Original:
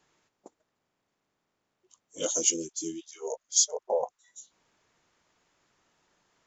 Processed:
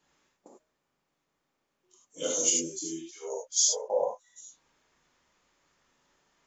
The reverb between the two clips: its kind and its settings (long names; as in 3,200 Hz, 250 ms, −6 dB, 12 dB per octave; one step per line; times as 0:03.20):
reverb whose tail is shaped and stops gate 120 ms flat, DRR −4 dB
level −5 dB